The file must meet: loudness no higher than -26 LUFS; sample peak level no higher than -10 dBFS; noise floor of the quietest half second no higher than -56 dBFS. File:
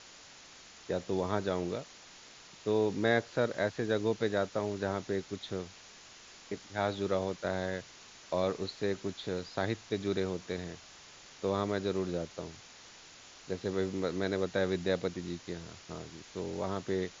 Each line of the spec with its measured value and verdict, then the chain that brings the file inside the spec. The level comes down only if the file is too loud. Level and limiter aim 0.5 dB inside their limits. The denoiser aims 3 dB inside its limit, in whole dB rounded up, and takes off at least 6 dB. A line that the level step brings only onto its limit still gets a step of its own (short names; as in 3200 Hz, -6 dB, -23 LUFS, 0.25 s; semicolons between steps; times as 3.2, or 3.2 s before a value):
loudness -34.5 LUFS: OK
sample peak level -14.0 dBFS: OK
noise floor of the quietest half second -54 dBFS: fail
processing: denoiser 6 dB, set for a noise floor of -54 dBFS